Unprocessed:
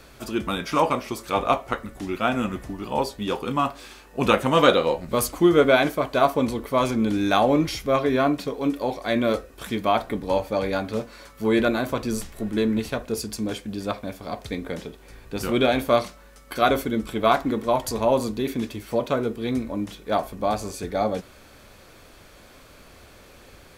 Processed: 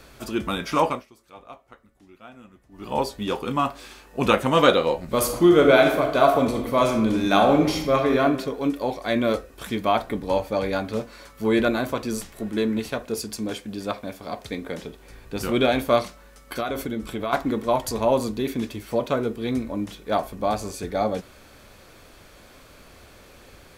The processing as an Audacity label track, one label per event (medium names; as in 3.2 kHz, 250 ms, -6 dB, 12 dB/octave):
0.850000	2.920000	dip -22 dB, fades 0.21 s
5.070000	8.210000	reverb throw, RT60 0.86 s, DRR 3.5 dB
11.920000	14.830000	bass shelf 110 Hz -8 dB
16.600000	17.330000	compression 5:1, threshold -24 dBFS